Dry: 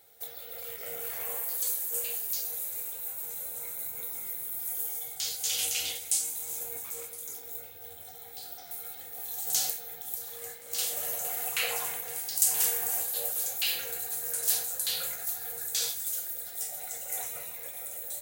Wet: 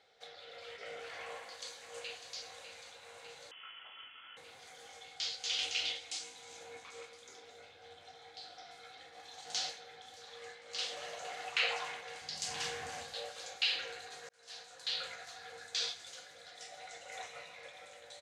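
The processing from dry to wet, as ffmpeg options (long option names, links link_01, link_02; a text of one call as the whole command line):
ffmpeg -i in.wav -filter_complex "[0:a]asplit=2[link_01][link_02];[link_02]afade=type=in:start_time=1.22:duration=0.01,afade=type=out:start_time=2.3:duration=0.01,aecho=0:1:600|1200|1800|2400|3000|3600|4200|4800|5400|6000|6600|7200:0.334965|0.267972|0.214378|0.171502|0.137202|0.109761|0.0878092|0.0702473|0.0561979|0.0449583|0.0359666|0.0287733[link_03];[link_01][link_03]amix=inputs=2:normalize=0,asettb=1/sr,asplit=3[link_04][link_05][link_06];[link_04]atrim=end=3.514[link_07];[link_05]atrim=start=3.51:end=4.37,asetpts=PTS-STARTPTS,afade=type=in:duration=0.004:curve=qsin,afade=type=out:start_time=0.856:duration=0.004:curve=qsin,lowpass=frequency=3000:width_type=q:width=0.5098,lowpass=frequency=3000:width_type=q:width=0.6013,lowpass=frequency=3000:width_type=q:width=0.9,lowpass=frequency=3000:width_type=q:width=2.563,afreqshift=-3500[link_08];[link_06]atrim=start=4.366[link_09];[link_07][link_08]acrossfade=duration=0.004:curve1=hsin:curve2=qsin[link_10];[link_10][link_09]acrossfade=duration=0.004:curve1=qsin:curve2=hsin,asettb=1/sr,asplit=3[link_11][link_12][link_13];[link_11]atrim=end=12.214[link_14];[link_12]atrim=start=12.21:end=13.14,asetpts=PTS-STARTPTS,afade=type=in:duration=0.004:curve=qsin,afade=type=out:start_time=0.926:duration=0.004:curve=qsin,bass=frequency=250:gain=13,treble=frequency=4000:gain=1[link_15];[link_13]atrim=start=13.136[link_16];[link_14][link_15]acrossfade=duration=0.004:curve1=hsin:curve2=qsin[link_17];[link_17][link_16]acrossfade=duration=0.004:curve1=qsin:curve2=hsin,asplit=2[link_18][link_19];[link_18]atrim=end=14.29,asetpts=PTS-STARTPTS,afade=type=out:start_time=14.286:duration=0.004:curve=hsin[link_20];[link_19]atrim=start=14.29,asetpts=PTS-STARTPTS,afade=type=in:duration=0.82[link_21];[link_20][link_21]concat=n=2:v=0:a=1,lowpass=frequency=4800:width=0.5412,lowpass=frequency=4800:width=1.3066,lowshelf=frequency=300:gain=-11.5" out.wav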